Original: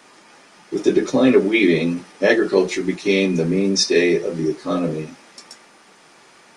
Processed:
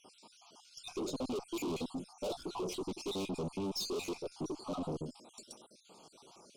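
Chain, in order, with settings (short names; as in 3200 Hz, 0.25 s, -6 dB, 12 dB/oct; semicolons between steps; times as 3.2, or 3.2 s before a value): random spectral dropouts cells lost 52%; tube stage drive 30 dB, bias 0.3; Butterworth band-stop 1800 Hz, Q 0.96; gain -4.5 dB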